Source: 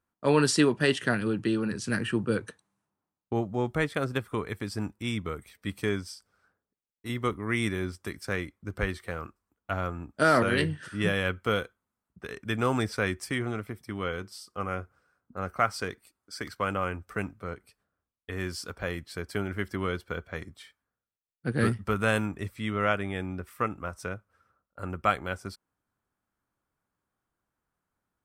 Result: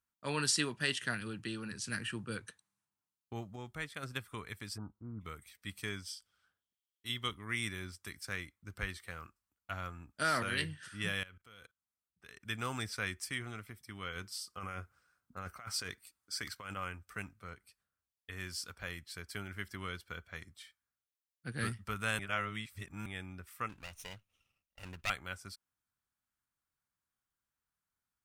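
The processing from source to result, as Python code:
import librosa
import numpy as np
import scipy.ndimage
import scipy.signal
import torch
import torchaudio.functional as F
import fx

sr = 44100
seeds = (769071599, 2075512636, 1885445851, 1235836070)

y = fx.steep_lowpass(x, sr, hz=1400.0, slope=72, at=(4.76, 5.2), fade=0.02)
y = fx.peak_eq(y, sr, hz=3200.0, db=13.0, octaves=0.32, at=(6.04, 7.45))
y = fx.level_steps(y, sr, step_db=23, at=(11.23, 12.42))
y = fx.over_compress(y, sr, threshold_db=-34.0, ratio=-1.0, at=(14.15, 16.75), fade=0.02)
y = fx.lower_of_two(y, sr, delay_ms=0.32, at=(23.69, 25.1))
y = fx.edit(y, sr, fx.clip_gain(start_s=3.56, length_s=0.47, db=-4.0),
    fx.reverse_span(start_s=22.19, length_s=0.87), tone=tone)
y = fx.tone_stack(y, sr, knobs='5-5-5')
y = F.gain(torch.from_numpy(y), 4.0).numpy()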